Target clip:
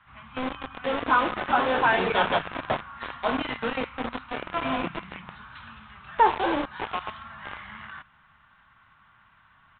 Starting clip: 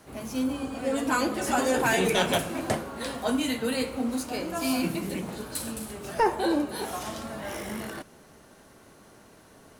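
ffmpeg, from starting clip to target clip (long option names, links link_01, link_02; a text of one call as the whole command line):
ffmpeg -i in.wav -filter_complex "[0:a]equalizer=frequency=1100:width=0.89:gain=13.5,acrossover=split=170|1100[link_01][link_02][link_03];[link_02]acrusher=bits=3:mix=0:aa=0.000001[link_04];[link_01][link_04][link_03]amix=inputs=3:normalize=0,aresample=8000,aresample=44100,volume=-5.5dB" out.wav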